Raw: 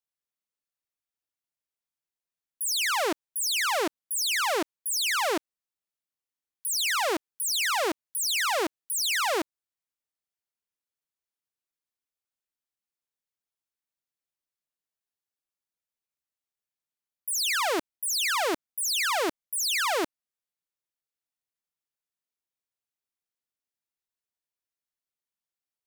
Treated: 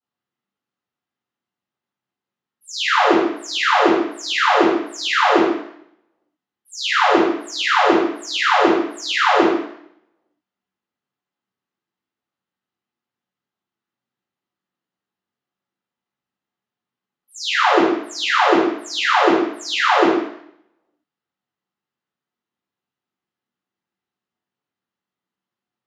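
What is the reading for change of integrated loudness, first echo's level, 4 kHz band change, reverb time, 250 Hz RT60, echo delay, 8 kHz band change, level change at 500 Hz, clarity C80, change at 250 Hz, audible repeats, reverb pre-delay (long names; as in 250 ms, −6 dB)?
+9.0 dB, no echo audible, +5.5 dB, 0.65 s, 0.65 s, no echo audible, −5.5 dB, +13.0 dB, 4.5 dB, +17.5 dB, no echo audible, 3 ms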